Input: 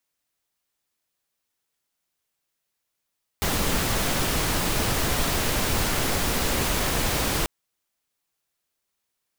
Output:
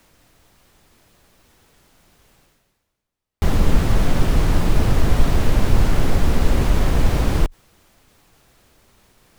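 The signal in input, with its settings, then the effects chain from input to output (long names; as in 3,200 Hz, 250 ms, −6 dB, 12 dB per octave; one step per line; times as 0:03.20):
noise pink, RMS −24 dBFS 4.04 s
spectral tilt −3 dB per octave
reversed playback
upward compression, threshold −32 dBFS
reversed playback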